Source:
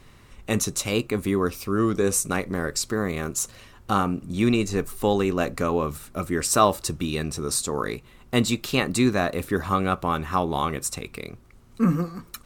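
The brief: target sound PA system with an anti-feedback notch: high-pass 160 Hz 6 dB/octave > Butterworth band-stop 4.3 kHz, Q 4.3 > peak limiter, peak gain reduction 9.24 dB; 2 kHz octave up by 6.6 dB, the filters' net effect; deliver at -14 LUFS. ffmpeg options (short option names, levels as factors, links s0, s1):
-af "highpass=f=160:p=1,asuperstop=centerf=4300:order=8:qfactor=4.3,equalizer=f=2000:t=o:g=8.5,volume=4.22,alimiter=limit=1:level=0:latency=1"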